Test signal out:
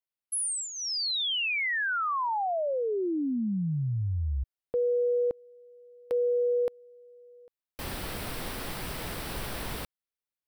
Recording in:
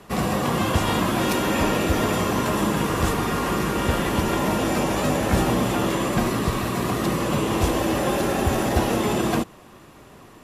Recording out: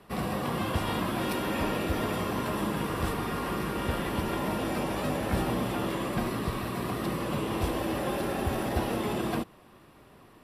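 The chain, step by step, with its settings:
parametric band 6,700 Hz −12 dB 0.34 octaves
level −8 dB

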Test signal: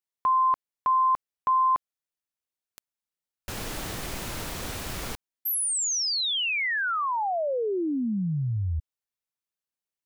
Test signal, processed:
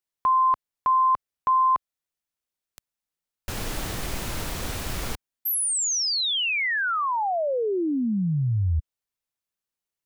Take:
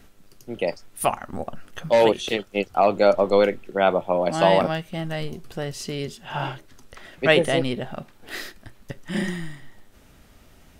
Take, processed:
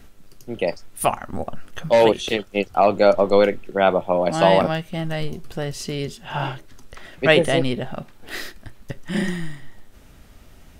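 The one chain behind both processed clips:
low-shelf EQ 88 Hz +5.5 dB
level +2 dB

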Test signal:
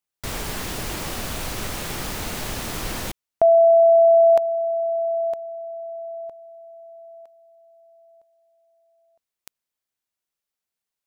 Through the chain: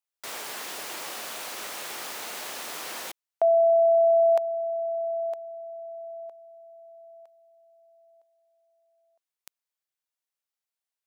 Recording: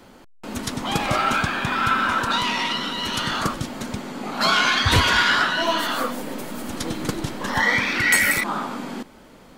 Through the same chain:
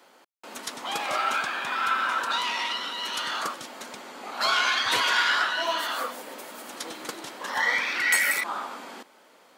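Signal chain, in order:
high-pass filter 520 Hz 12 dB per octave
level −4.5 dB

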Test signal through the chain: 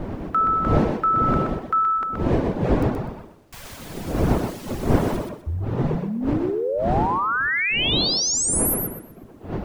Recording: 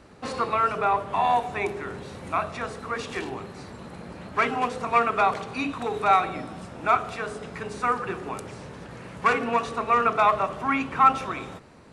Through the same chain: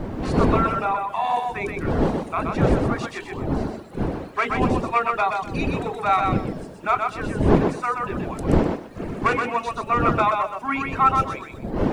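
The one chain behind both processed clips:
wind on the microphone 360 Hz −24 dBFS
reverb reduction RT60 1.4 s
bit reduction 11 bits
on a send: feedback echo with a high-pass in the loop 125 ms, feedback 23%, high-pass 200 Hz, level −4 dB

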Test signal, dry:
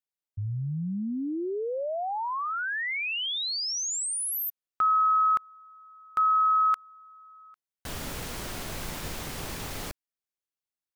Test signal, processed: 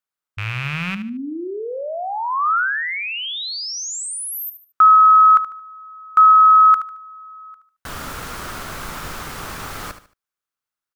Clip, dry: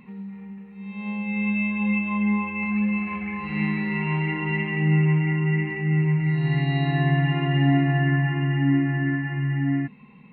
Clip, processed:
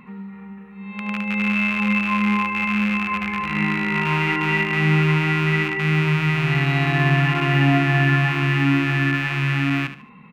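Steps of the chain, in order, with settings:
loose part that buzzes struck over −31 dBFS, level −20 dBFS
parametric band 1,300 Hz +11 dB 0.79 octaves
on a send: repeating echo 74 ms, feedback 31%, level −11.5 dB
on the sum: level +2.5 dB

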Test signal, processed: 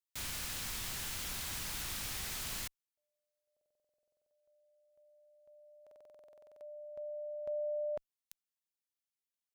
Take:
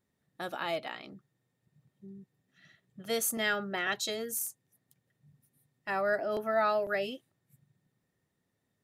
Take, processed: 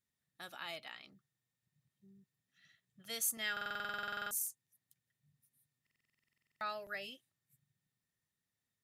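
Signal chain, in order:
guitar amp tone stack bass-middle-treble 5-5-5
buffer that repeats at 0:03.52/0:05.82, samples 2,048, times 16
level +2.5 dB

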